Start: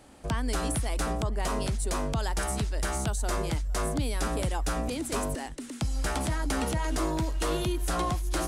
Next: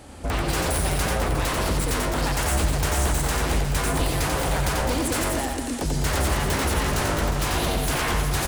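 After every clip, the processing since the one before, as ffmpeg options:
-af "aeval=exprs='0.0316*(abs(mod(val(0)/0.0316+3,4)-2)-1)':c=same,equalizer=f=81:t=o:w=0.48:g=12,aecho=1:1:90|207|359.1|556.8|813.9:0.631|0.398|0.251|0.158|0.1,volume=8.5dB"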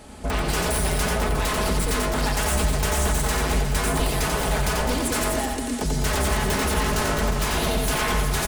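-af "aecho=1:1:4.7:0.49"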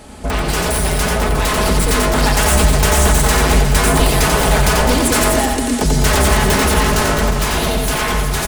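-af "dynaudnorm=f=200:g=17:m=4dB,volume=6dB"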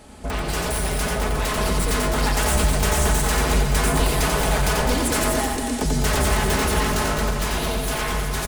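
-af "aecho=1:1:228:0.299,volume=-7.5dB"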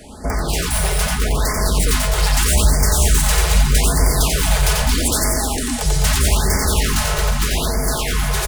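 -filter_complex "[0:a]acrossover=split=120|2400[a][b][c];[b]alimiter=limit=-22.5dB:level=0:latency=1:release=143[d];[a][d][c]amix=inputs=3:normalize=0,afftfilt=real='re*(1-between(b*sr/1024,240*pow(3300/240,0.5+0.5*sin(2*PI*0.8*pts/sr))/1.41,240*pow(3300/240,0.5+0.5*sin(2*PI*0.8*pts/sr))*1.41))':imag='im*(1-between(b*sr/1024,240*pow(3300/240,0.5+0.5*sin(2*PI*0.8*pts/sr))/1.41,240*pow(3300/240,0.5+0.5*sin(2*PI*0.8*pts/sr))*1.41))':win_size=1024:overlap=0.75,volume=6.5dB"

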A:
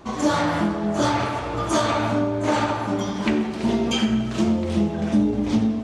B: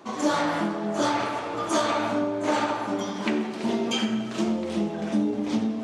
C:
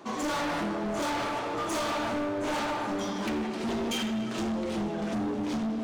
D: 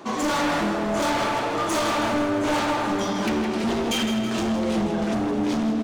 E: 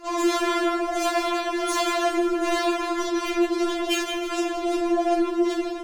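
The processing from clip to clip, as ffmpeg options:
-af "highpass=220,areverse,acompressor=mode=upward:threshold=-27dB:ratio=2.5,areverse,volume=-2.5dB"
-af "volume=28dB,asoftclip=hard,volume=-28dB"
-af "aecho=1:1:162|324|486|648|810|972:0.316|0.174|0.0957|0.0526|0.0289|0.0159,volume=6.5dB"
-af "afftfilt=real='hypot(re,im)*cos(2*PI*random(0))':imag='hypot(re,im)*sin(2*PI*random(1))':win_size=512:overlap=0.75,afftfilt=real='re*4*eq(mod(b,16),0)':imag='im*4*eq(mod(b,16),0)':win_size=2048:overlap=0.75,volume=8.5dB"

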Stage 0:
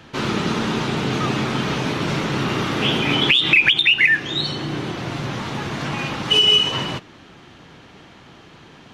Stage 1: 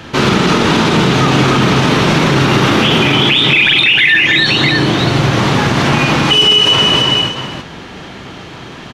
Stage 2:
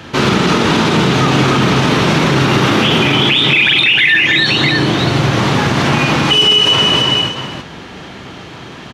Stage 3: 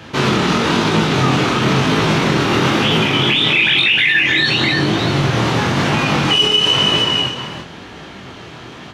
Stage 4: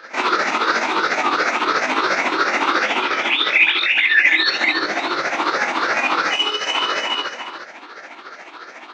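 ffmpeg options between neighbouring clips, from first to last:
-filter_complex "[0:a]asplit=2[a][b];[b]aecho=0:1:43|201|306|633:0.473|0.376|0.501|0.266[c];[a][c]amix=inputs=2:normalize=0,alimiter=level_in=13.5dB:limit=-1dB:release=50:level=0:latency=1,volume=-1dB"
-af "highpass=43,volume=-1dB"
-af "flanger=delay=18.5:depth=7.4:speed=1"
-af "afftfilt=real='re*pow(10,9/40*sin(2*PI*(0.6*log(max(b,1)*sr/1024/100)/log(2)-(2.9)*(pts-256)/sr)))':imag='im*pow(10,9/40*sin(2*PI*(0.6*log(max(b,1)*sr/1024/100)/log(2)-(2.9)*(pts-256)/sr)))':win_size=1024:overlap=0.75,highpass=f=360:w=0.5412,highpass=f=360:w=1.3066,equalizer=f=420:t=q:w=4:g=-7,equalizer=f=1.4k:t=q:w=4:g=6,equalizer=f=2.1k:t=q:w=4:g=4,equalizer=f=3.1k:t=q:w=4:g=-10,lowpass=f=6.2k:w=0.5412,lowpass=f=6.2k:w=1.3066,tremolo=f=14:d=0.54"

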